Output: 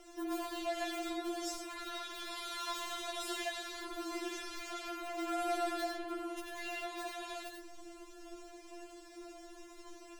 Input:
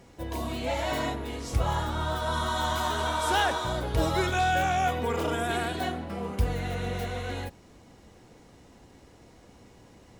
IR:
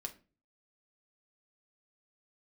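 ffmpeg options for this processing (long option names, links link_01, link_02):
-filter_complex "[0:a]asettb=1/sr,asplit=3[link_01][link_02][link_03];[link_01]atrim=end=6.284[link_04];[link_02]atrim=start=6.28:end=6.85,asetpts=PTS-STARTPTS,afade=type=in:duration=0.004:curve=qsin,afade=type=out:start_time=0.566:duration=0.004:curve=qsin,asplit=2[link_05][link_06];[link_06]adelay=25,volume=-5.5dB[link_07];[link_05][link_07]amix=inputs=2:normalize=0,atrim=end_sample=25137[link_08];[link_03]atrim=start=6.846[link_09];[link_04][link_08]acrossfade=duration=0.004:curve1=hsin:curve2=qsin[link_10];[link_10][link_09]acrossfade=duration=0.004:curve1=qsin:curve2=hsin,acompressor=threshold=-33dB:ratio=3,asplit=2[link_11][link_12];[1:a]atrim=start_sample=2205,adelay=91[link_13];[link_12][link_13]afir=irnorm=-1:irlink=0,volume=-2dB[link_14];[link_11][link_14]amix=inputs=2:normalize=0,asoftclip=type=tanh:threshold=-36dB,afftfilt=real='re*4*eq(mod(b,16),0)':imag='im*4*eq(mod(b,16),0)':win_size=2048:overlap=0.75,volume=5dB"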